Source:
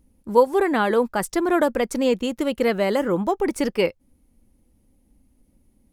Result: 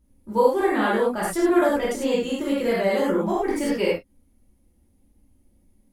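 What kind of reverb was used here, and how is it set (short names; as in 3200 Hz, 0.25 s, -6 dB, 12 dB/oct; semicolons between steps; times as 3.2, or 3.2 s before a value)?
non-linear reverb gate 0.13 s flat, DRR -7.5 dB; gain -9 dB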